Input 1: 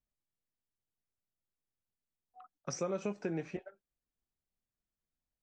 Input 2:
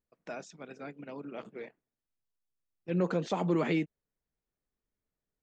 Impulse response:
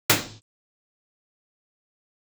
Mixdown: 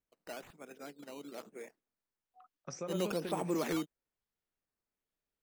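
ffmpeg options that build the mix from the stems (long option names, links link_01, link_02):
-filter_complex "[0:a]volume=-5.5dB[link_01];[1:a]highpass=220,acrusher=samples=9:mix=1:aa=0.000001:lfo=1:lforange=9:lforate=1.1,volume=-4dB[link_02];[link_01][link_02]amix=inputs=2:normalize=0"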